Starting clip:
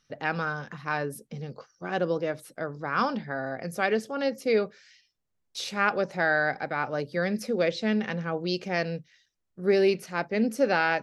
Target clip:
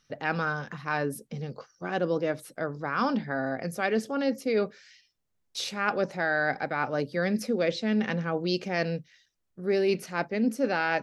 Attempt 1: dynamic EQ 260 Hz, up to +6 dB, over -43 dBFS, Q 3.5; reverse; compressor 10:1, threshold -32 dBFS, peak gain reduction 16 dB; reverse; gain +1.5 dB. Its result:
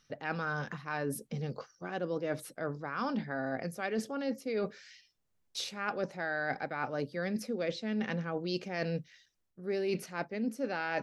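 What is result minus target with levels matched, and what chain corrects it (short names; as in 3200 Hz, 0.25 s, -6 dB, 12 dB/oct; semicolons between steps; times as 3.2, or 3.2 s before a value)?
compressor: peak gain reduction +8 dB
dynamic EQ 260 Hz, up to +6 dB, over -43 dBFS, Q 3.5; reverse; compressor 10:1, threshold -23 dBFS, peak gain reduction 7.5 dB; reverse; gain +1.5 dB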